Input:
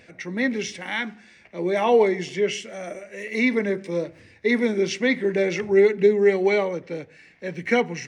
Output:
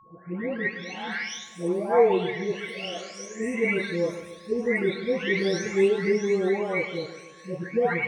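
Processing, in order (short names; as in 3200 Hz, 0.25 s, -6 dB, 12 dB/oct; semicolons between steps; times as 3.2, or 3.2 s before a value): spectral delay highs late, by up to 0.92 s; split-band echo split 790 Hz, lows 0.141 s, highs 0.101 s, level -12.5 dB; whine 1100 Hz -53 dBFS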